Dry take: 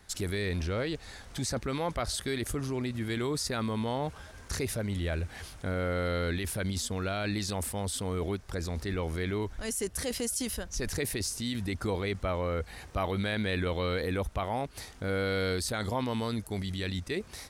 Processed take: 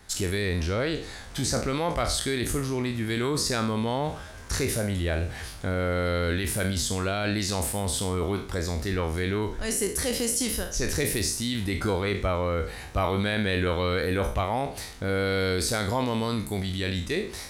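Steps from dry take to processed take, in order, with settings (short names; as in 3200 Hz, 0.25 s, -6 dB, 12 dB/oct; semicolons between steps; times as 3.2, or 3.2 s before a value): spectral trails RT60 0.46 s; gain +4 dB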